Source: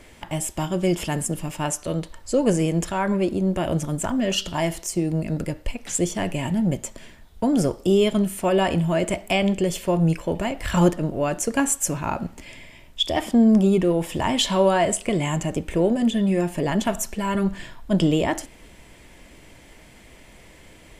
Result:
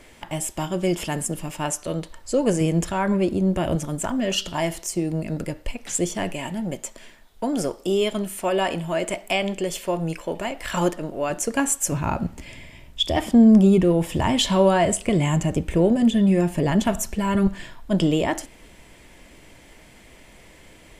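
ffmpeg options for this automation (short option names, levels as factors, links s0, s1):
-af "asetnsamples=n=441:p=0,asendcmd='2.61 equalizer g 3;3.75 equalizer g -4;6.32 equalizer g -14.5;11.3 equalizer g -4.5;11.92 equalizer g 7;17.47 equalizer g -2',equalizer=f=71:t=o:w=2.9:g=-4"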